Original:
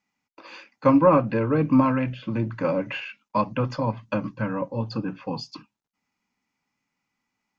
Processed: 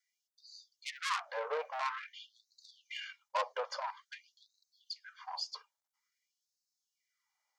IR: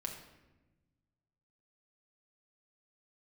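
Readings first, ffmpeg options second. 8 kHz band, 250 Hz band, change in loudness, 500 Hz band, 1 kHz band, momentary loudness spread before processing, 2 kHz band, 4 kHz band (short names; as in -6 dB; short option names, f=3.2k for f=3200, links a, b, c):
n/a, under -40 dB, -15.5 dB, -18.5 dB, -12.0 dB, 14 LU, -7.5 dB, -1.0 dB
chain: -af "asuperstop=centerf=2600:order=20:qfactor=7.2,highshelf=f=3.2k:g=-9,asoftclip=type=tanh:threshold=-22.5dB,bass=f=250:g=-14,treble=f=4k:g=13,afftfilt=real='re*gte(b*sr/1024,420*pow(3800/420,0.5+0.5*sin(2*PI*0.49*pts/sr)))':imag='im*gte(b*sr/1024,420*pow(3800/420,0.5+0.5*sin(2*PI*0.49*pts/sr)))':win_size=1024:overlap=0.75,volume=-3.5dB"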